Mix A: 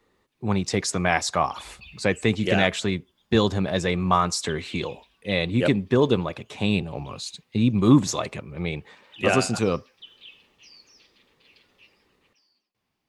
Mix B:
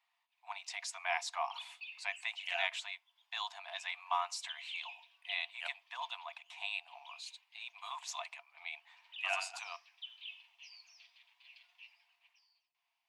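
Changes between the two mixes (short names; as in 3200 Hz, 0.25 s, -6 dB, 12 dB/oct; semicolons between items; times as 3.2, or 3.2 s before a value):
speech -7.5 dB; master: add rippled Chebyshev high-pass 670 Hz, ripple 9 dB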